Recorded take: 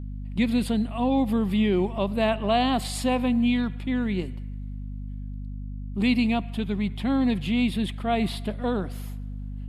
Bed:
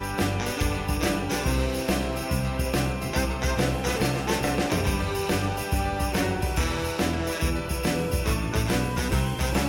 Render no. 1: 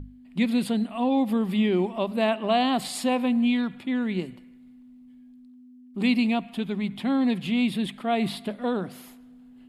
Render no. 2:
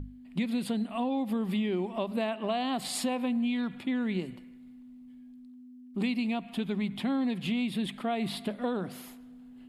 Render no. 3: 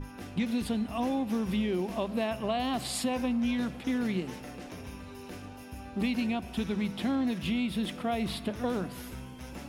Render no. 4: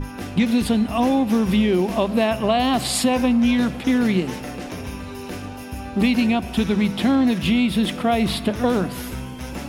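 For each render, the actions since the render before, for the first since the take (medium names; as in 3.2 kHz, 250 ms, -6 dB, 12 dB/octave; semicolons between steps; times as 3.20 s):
hum notches 50/100/150/200 Hz
compression, threshold -27 dBFS, peak gain reduction 9.5 dB
add bed -19 dB
trim +11.5 dB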